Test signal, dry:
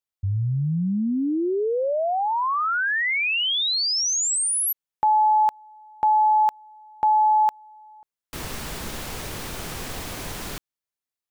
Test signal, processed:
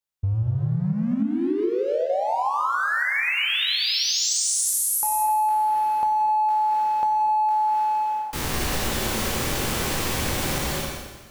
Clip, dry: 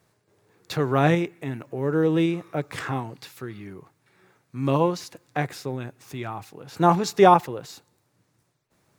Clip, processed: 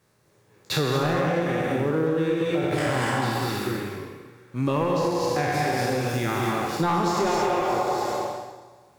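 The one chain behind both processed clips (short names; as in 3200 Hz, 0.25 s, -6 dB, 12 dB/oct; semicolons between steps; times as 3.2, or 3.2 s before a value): spectral trails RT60 1.63 s; notch 690 Hz, Q 12; sample leveller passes 1; soft clip -8 dBFS; on a send: darkening echo 92 ms, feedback 45%, level -9 dB; on the sum: non-linear reverb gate 0.28 s rising, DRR -1 dB; compressor 12:1, threshold -20 dBFS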